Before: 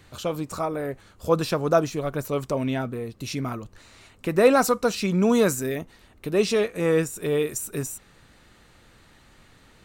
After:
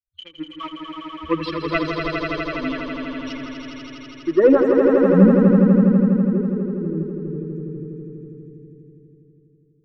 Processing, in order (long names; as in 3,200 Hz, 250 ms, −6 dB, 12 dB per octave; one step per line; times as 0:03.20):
spectral dynamics exaggerated over time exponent 3
mains-hum notches 60/120/180/240/300 Hz
leveller curve on the samples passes 2
phaser with its sweep stopped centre 310 Hz, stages 4
low-pass filter sweep 2,500 Hz → 170 Hz, 0:04.00–0:05.28
on a send: echo that builds up and dies away 82 ms, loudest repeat 5, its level −6 dB
on the sum: level +4.5 dB